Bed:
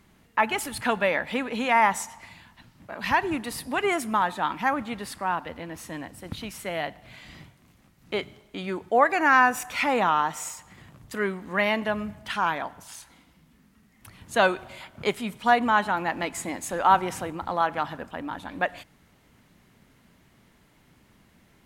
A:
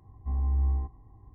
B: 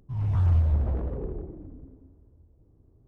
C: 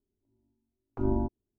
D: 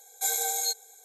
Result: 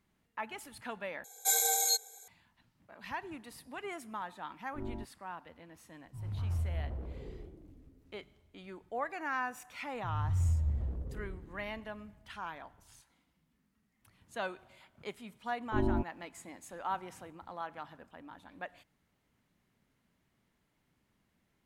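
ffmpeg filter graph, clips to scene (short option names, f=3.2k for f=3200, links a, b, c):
-filter_complex "[3:a]asplit=2[a][b];[2:a]asplit=2[c][d];[0:a]volume=-17dB[e];[d]bass=f=250:g=8,treble=f=4k:g=9[f];[b]alimiter=limit=-18dB:level=0:latency=1:release=71[g];[e]asplit=2[h][i];[h]atrim=end=1.244[j];[4:a]atrim=end=1.04,asetpts=PTS-STARTPTS,volume=-0.5dB[k];[i]atrim=start=2.276[l];[a]atrim=end=1.58,asetpts=PTS-STARTPTS,volume=-13.5dB,afade=t=in:d=0.004:c=hsin,afade=t=out:st=1.576:d=0.004:c=hsin,adelay=166257S[m];[c]atrim=end=3.07,asetpts=PTS-STARTPTS,volume=-12.5dB,afade=t=in:d=0.004:c=hsin,afade=t=out:st=3.066:d=0.004:c=hsin,adelay=6040[n];[f]atrim=end=3.07,asetpts=PTS-STARTPTS,volume=-16dB,afade=t=in:d=0.004:c=hsin,afade=t=out:st=3.066:d=0.004:c=hsin,adelay=438354S[o];[g]atrim=end=1.58,asetpts=PTS-STARTPTS,volume=-1dB,afade=t=in:d=0.004:c=hsin,afade=t=out:st=1.576:d=0.004:c=hsin,adelay=14750[p];[j][k]acrossfade=d=0.004:c1=hsin:c2=hsin[q];[q][l]acrossfade=d=0.004:c1=hsin:c2=hsin[r];[r][m][n][o][p]amix=inputs=5:normalize=0"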